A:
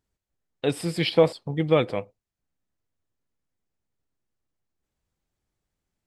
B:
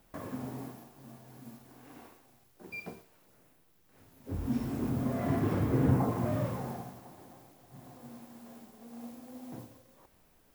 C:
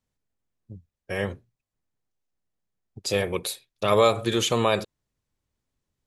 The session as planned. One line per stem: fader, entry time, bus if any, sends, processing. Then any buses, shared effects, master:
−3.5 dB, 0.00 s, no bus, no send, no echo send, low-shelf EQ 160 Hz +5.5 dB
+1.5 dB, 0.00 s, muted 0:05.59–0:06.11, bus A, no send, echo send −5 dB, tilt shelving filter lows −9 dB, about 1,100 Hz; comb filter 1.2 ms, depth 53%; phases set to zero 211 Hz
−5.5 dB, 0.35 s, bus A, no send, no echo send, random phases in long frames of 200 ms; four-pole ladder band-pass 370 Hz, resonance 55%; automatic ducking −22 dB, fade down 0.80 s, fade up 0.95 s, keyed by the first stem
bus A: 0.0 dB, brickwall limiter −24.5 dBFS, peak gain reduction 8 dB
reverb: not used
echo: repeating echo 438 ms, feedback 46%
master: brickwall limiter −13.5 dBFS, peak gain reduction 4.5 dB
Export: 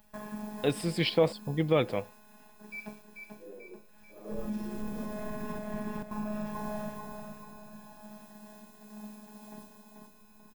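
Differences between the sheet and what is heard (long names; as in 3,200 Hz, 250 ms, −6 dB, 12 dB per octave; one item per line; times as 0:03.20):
stem A: missing low-shelf EQ 160 Hz +5.5 dB
stem B: missing tilt shelving filter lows −9 dB, about 1,100 Hz
stem C −5.5 dB → −12.5 dB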